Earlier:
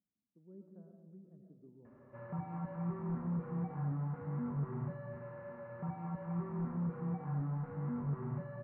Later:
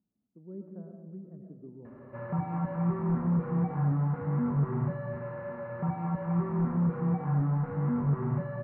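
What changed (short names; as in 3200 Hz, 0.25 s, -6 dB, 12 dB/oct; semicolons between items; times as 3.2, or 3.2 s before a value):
speech +11.5 dB; background +9.5 dB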